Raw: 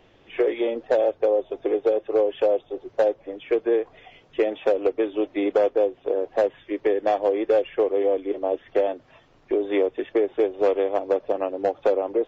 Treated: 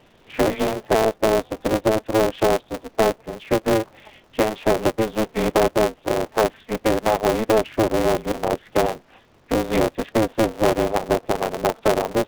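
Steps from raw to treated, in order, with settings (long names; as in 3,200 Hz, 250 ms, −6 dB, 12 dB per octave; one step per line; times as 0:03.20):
ring modulator with a square carrier 110 Hz
level +2 dB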